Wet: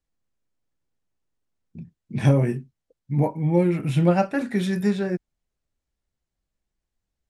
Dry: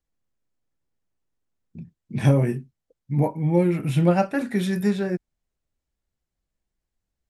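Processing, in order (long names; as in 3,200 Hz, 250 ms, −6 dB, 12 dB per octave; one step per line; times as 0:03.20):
low-pass filter 9,800 Hz 12 dB per octave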